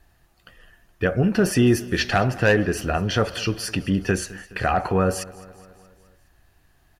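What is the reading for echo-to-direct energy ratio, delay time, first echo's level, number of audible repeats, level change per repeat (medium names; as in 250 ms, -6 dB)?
-18.5 dB, 210 ms, -20.5 dB, 4, -4.5 dB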